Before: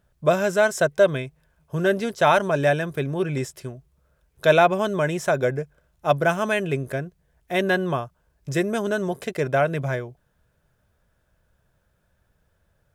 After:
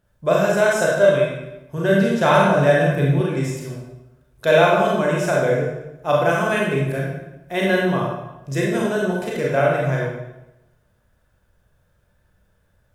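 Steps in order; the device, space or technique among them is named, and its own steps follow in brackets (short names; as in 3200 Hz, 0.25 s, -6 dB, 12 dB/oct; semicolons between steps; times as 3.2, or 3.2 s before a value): bathroom (reverb RT60 0.95 s, pre-delay 28 ms, DRR -4 dB); 1.93–3.21 bell 130 Hz +6.5 dB 1.4 oct; gain -2 dB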